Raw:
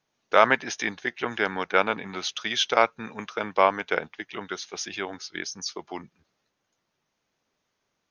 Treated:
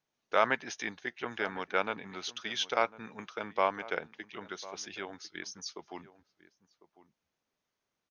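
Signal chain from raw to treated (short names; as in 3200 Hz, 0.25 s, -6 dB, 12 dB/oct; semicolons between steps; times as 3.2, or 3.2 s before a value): outdoor echo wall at 180 m, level -17 dB; gain -8.5 dB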